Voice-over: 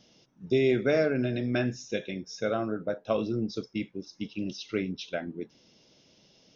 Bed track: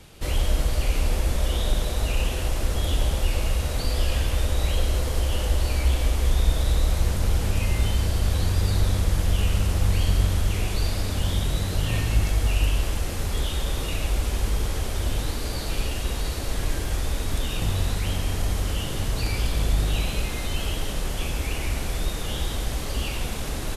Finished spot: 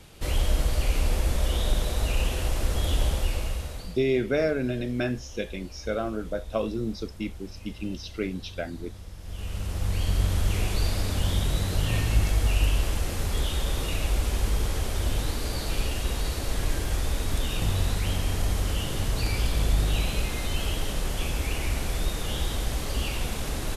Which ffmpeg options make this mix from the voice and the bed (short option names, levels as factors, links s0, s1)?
-filter_complex "[0:a]adelay=3450,volume=1[s0];[1:a]volume=7.5,afade=t=out:st=3.07:d=0.93:silence=0.11885,afade=t=in:st=9.2:d=1.34:silence=0.112202[s1];[s0][s1]amix=inputs=2:normalize=0"